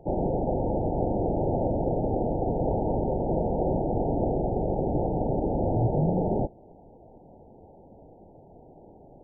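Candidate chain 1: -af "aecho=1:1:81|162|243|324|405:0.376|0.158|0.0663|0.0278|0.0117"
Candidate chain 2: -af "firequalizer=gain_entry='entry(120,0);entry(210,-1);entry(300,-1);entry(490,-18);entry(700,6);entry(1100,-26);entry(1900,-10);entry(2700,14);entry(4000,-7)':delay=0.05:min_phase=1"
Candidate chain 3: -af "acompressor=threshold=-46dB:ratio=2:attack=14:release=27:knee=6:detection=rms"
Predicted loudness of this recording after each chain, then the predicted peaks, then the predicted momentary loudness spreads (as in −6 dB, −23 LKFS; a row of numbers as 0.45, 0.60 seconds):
−26.5, −29.0, −38.0 LKFS; −12.0, −14.5, −25.5 dBFS; 2, 3, 15 LU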